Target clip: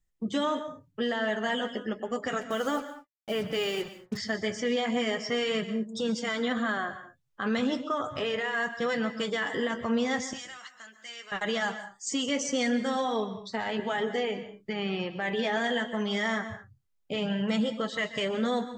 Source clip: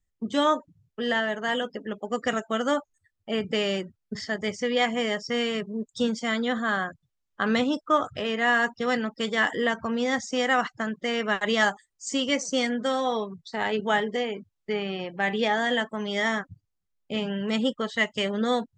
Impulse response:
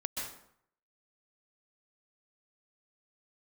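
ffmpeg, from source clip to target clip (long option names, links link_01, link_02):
-filter_complex "[0:a]asettb=1/sr,asplit=3[link_01][link_02][link_03];[link_01]atrim=end=2.414[link_04];[link_02]atrim=start=2.41:end=4.17,asetpts=PTS-STARTPTS,afade=type=in:duration=0.004:curve=qsin,afade=type=out:start_time=1.756:duration=0.004:curve=qsin,acrusher=bits=6:mix=0:aa=0.5[link_05];[link_03]atrim=start=4.166[link_06];[link_04][link_05]acrossfade=duration=0.004:curve1=hsin:curve2=qsin[link_07];[link_07][link_06]acrossfade=duration=0.004:curve1=qsin:curve2=hsin,alimiter=limit=-20.5dB:level=0:latency=1:release=43,asettb=1/sr,asplit=3[link_08][link_09][link_10];[link_08]atrim=end=10.334[link_11];[link_09]atrim=start=10.33:end=11.32,asetpts=PTS-STARTPTS,afade=type=in:duration=0.004:curve=qsin,afade=type=out:start_time=0.986:duration=0.004:curve=qsin,aderivative[link_12];[link_10]atrim=start=11.316[link_13];[link_11][link_12]acrossfade=duration=0.004:curve1=hsin:curve2=qsin[link_14];[link_14][link_13]acrossfade=duration=0.004:curve1=qsin:curve2=hsin,flanger=delay=5.9:depth=3.1:regen=-44:speed=0.34:shape=sinusoidal,asplit=2[link_15][link_16];[1:a]atrim=start_sample=2205,afade=type=out:start_time=0.29:duration=0.01,atrim=end_sample=13230[link_17];[link_16][link_17]afir=irnorm=-1:irlink=0,volume=-9dB[link_18];[link_15][link_18]amix=inputs=2:normalize=0,volume=2dB"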